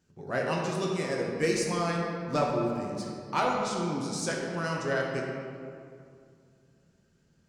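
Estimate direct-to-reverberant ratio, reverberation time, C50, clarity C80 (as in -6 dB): -2.0 dB, 2.3 s, 1.0 dB, 2.5 dB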